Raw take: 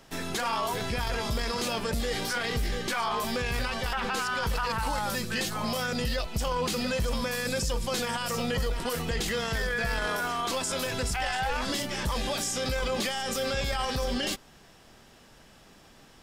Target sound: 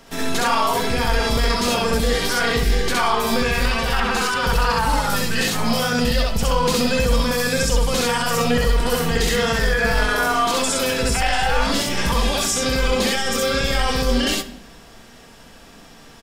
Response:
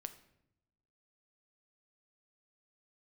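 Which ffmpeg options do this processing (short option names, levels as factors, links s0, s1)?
-filter_complex "[0:a]aecho=1:1:4.3:0.31,asplit=2[s0][s1];[1:a]atrim=start_sample=2205,adelay=66[s2];[s1][s2]afir=irnorm=-1:irlink=0,volume=1.68[s3];[s0][s3]amix=inputs=2:normalize=0,volume=2"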